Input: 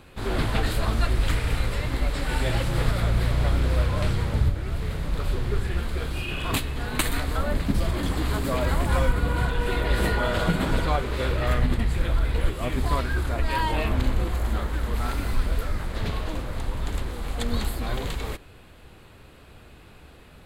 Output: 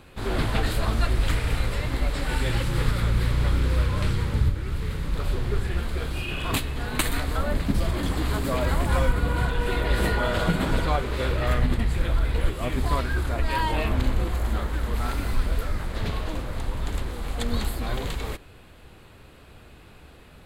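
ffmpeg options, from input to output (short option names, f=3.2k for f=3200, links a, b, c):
-filter_complex "[0:a]asettb=1/sr,asplit=3[a][b][c];[a]atrim=end=2.354[d];[b]atrim=start=2.35:end=5.16,asetpts=PTS-STARTPTS,afade=t=in:d=0.004:c=qsin,afade=t=out:st=2.806:d=0.004:c=qsin,equalizer=f=670:t=o:w=0.36:g=-11[e];[c]atrim=start=5.156[f];[d][e]acrossfade=d=0.004:c1=hsin:c2=qsin[g];[g][f]acrossfade=d=0.004:c1=qsin:c2=hsin"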